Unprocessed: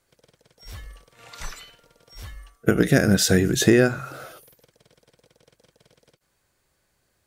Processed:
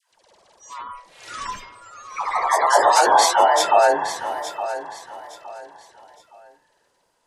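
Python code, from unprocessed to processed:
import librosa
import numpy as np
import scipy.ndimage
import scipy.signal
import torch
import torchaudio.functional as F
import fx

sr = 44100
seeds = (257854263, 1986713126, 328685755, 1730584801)

p1 = fx.band_invert(x, sr, width_hz=1000)
p2 = fx.echo_pitch(p1, sr, ms=86, semitones=2, count=3, db_per_echo=-3.0)
p3 = scipy.signal.sosfilt(scipy.signal.butter(2, 11000.0, 'lowpass', fs=sr, output='sos'), p2)
p4 = fx.spec_gate(p3, sr, threshold_db=-30, keep='strong')
p5 = fx.dispersion(p4, sr, late='lows', ms=121.0, hz=710.0)
p6 = p5 + fx.echo_feedback(p5, sr, ms=865, feedback_pct=30, wet_db=-12, dry=0)
y = F.gain(torch.from_numpy(p6), 1.0).numpy()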